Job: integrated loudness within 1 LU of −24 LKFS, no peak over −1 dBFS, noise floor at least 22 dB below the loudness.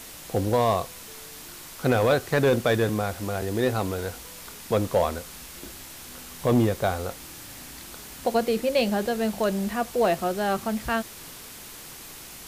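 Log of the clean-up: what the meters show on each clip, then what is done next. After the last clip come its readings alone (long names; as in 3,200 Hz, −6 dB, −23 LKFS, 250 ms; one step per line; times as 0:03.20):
share of clipped samples 0.4%; peaks flattened at −14.0 dBFS; background noise floor −43 dBFS; target noise floor −48 dBFS; integrated loudness −25.5 LKFS; sample peak −14.0 dBFS; target loudness −24.0 LKFS
→ clipped peaks rebuilt −14 dBFS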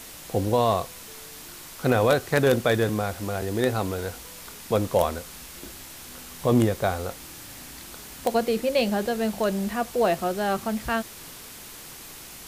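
share of clipped samples 0.0%; background noise floor −43 dBFS; target noise floor −47 dBFS
→ broadband denoise 6 dB, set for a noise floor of −43 dBFS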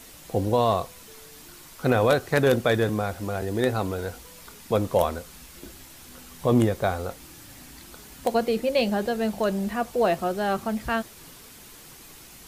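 background noise floor −47 dBFS; integrated loudness −25.0 LKFS; sample peak −5.5 dBFS; target loudness −24.0 LKFS
→ level +1 dB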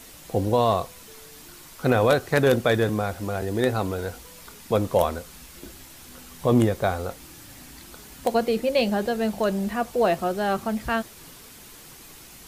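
integrated loudness −24.0 LKFS; sample peak −4.5 dBFS; background noise floor −46 dBFS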